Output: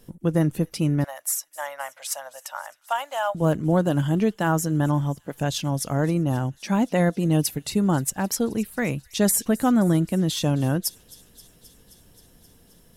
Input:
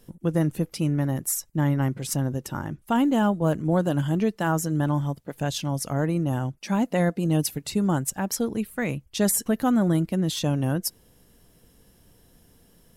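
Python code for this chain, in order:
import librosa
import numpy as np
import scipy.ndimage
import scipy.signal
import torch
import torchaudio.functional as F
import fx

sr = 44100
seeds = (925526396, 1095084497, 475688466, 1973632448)

y = fx.ellip_highpass(x, sr, hz=590.0, order=4, stop_db=40, at=(1.04, 3.35))
y = fx.echo_wet_highpass(y, sr, ms=264, feedback_pct=77, hz=3300.0, wet_db=-20.0)
y = y * librosa.db_to_amplitude(2.0)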